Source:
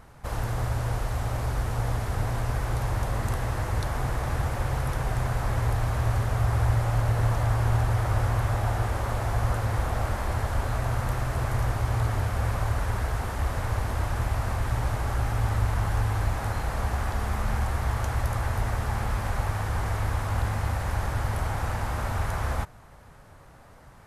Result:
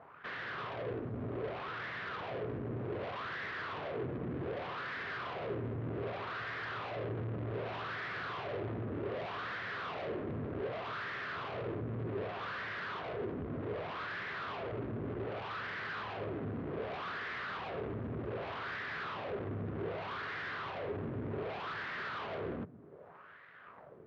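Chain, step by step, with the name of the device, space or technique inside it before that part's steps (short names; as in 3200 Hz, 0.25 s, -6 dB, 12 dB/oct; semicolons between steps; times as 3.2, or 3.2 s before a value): wah-wah guitar rig (wah 0.65 Hz 250–1900 Hz, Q 3.2; tube stage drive 49 dB, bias 0.7; speaker cabinet 90–3800 Hz, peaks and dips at 99 Hz +4 dB, 160 Hz +6 dB, 410 Hz +7 dB, 840 Hz -8 dB); gain +11.5 dB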